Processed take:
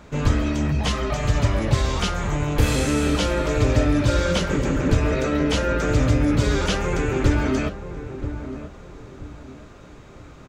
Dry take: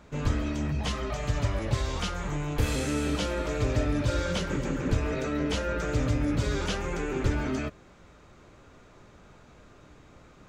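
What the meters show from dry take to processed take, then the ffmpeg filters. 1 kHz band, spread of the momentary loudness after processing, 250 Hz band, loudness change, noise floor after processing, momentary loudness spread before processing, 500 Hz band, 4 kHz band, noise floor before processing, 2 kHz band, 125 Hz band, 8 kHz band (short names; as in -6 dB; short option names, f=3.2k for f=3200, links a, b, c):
+7.5 dB, 14 LU, +8.0 dB, +7.5 dB, -44 dBFS, 4 LU, +8.0 dB, +7.5 dB, -54 dBFS, +7.5 dB, +8.0 dB, +7.5 dB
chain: -filter_complex "[0:a]asplit=2[a][b];[b]adelay=980,lowpass=f=850:p=1,volume=-10dB,asplit=2[c][d];[d]adelay=980,lowpass=f=850:p=1,volume=0.36,asplit=2[e][f];[f]adelay=980,lowpass=f=850:p=1,volume=0.36,asplit=2[g][h];[h]adelay=980,lowpass=f=850:p=1,volume=0.36[i];[a][c][e][g][i]amix=inputs=5:normalize=0,volume=7.5dB"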